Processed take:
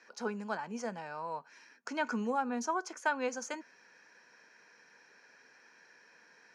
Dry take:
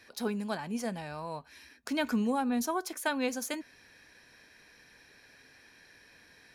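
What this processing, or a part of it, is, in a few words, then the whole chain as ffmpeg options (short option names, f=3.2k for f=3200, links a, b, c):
television speaker: -af "highpass=f=180:w=0.5412,highpass=f=180:w=1.3066,equalizer=f=280:t=q:w=4:g=-5,equalizer=f=480:t=q:w=4:g=4,equalizer=f=930:t=q:w=4:g=7,equalizer=f=1.4k:t=q:w=4:g=8,equalizer=f=3.7k:t=q:w=4:g=-10,equalizer=f=6.4k:t=q:w=4:g=6,lowpass=f=6.9k:w=0.5412,lowpass=f=6.9k:w=1.3066,volume=-4.5dB"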